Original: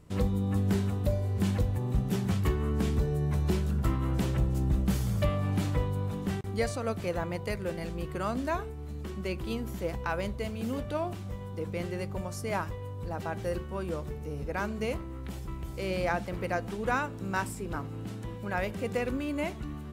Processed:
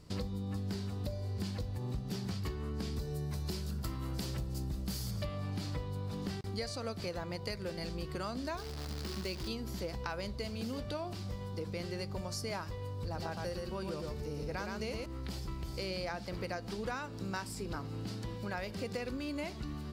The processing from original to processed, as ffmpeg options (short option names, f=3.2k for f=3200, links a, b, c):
-filter_complex "[0:a]asettb=1/sr,asplit=3[a][b][c];[a]atrim=end=2.964[d];[b]atrim=start=2.96:end=5.11,asetpts=PTS-STARTPTS,afade=t=in:d=0.004:c=qsin,afade=t=out:st=2.146:d=0.004:c=qsin,highshelf=f=7.4k:g=12[e];[c]atrim=start=5.106[f];[d][e]acrossfade=d=0.004:c1=hsin:c2=qsin[g];[g][f]acrossfade=d=0.004:c1=qsin:c2=hsin,asettb=1/sr,asplit=3[h][i][j];[h]atrim=end=8.574[k];[i]atrim=start=8.57:end=9.48,asetpts=PTS-STARTPTS,afade=t=in:d=0.004:c=qsin,afade=t=out:st=0.906:d=0.004:c=qsin,acrusher=bits=8:dc=4:mix=0:aa=0.000001[l];[j]atrim=start=9.476[m];[k][l]acrossfade=d=0.004:c1=hsin:c2=qsin[n];[n][m]acrossfade=d=0.004:c1=qsin:c2=hsin,asettb=1/sr,asplit=3[o][p][q];[o]atrim=end=12.934[r];[p]atrim=start=12.93:end=15.06,asetpts=PTS-STARTPTS,afade=t=in:d=0.004:c=qsin,afade=t=out:st=2.126:d=0.004:c=qsin,aecho=1:1:114:0.631,atrim=end_sample=93933[s];[q]atrim=start=15.056[t];[r][s]acrossfade=d=0.004:c1=hsin:c2=qsin[u];[u][t]acrossfade=d=0.004:c1=qsin:c2=hsin,equalizer=f=4.7k:t=o:w=0.57:g=14.5,acompressor=threshold=-34dB:ratio=6,volume=-1dB"